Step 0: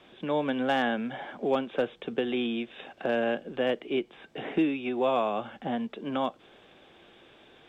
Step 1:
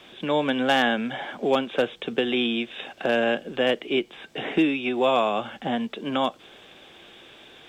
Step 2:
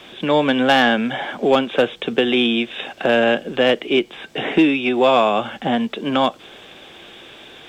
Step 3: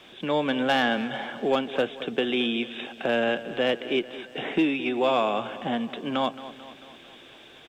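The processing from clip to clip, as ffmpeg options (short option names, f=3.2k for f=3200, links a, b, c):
-af "highshelf=f=2.6k:g=10.5,volume=4dB"
-af "acontrast=89"
-af "aecho=1:1:221|442|663|884|1105|1326:0.178|0.101|0.0578|0.0329|0.0188|0.0107,volume=-8.5dB"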